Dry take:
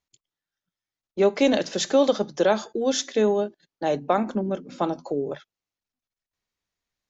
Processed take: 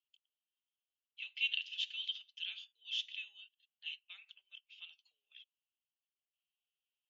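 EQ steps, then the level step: Butterworth band-pass 2900 Hz, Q 5; differentiator; +10.0 dB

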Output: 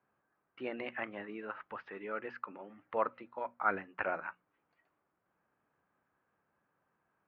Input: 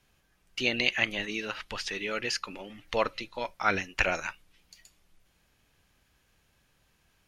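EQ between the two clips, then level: HPF 180 Hz 12 dB/oct; ladder low-pass 1600 Hz, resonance 35%; notches 60/120/180/240 Hz; +1.0 dB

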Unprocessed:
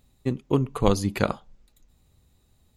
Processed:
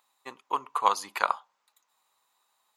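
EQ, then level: resonant high-pass 1000 Hz, resonance Q 3.8; -2.5 dB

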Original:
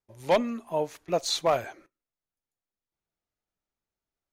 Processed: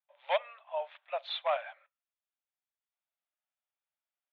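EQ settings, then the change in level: Chebyshev band-pass 570–3600 Hz, order 5; tilt shelf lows -3 dB, about 1400 Hz; -3.5 dB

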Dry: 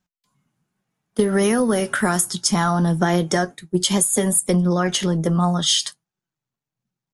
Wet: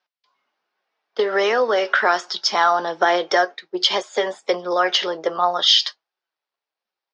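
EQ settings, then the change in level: HPF 460 Hz 24 dB/oct; steep low-pass 5300 Hz 48 dB/oct; +5.5 dB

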